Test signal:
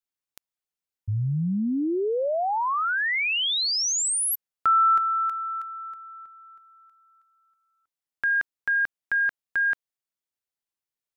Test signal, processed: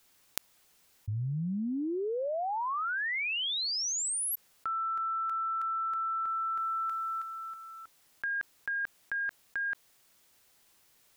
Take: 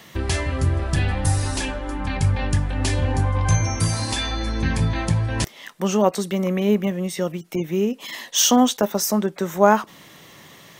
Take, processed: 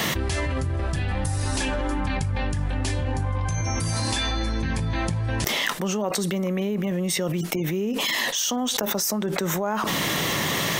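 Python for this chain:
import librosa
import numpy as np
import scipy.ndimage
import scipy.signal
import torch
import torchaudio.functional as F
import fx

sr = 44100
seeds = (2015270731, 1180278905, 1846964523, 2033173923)

y = fx.env_flatten(x, sr, amount_pct=100)
y = y * librosa.db_to_amplitude(-14.0)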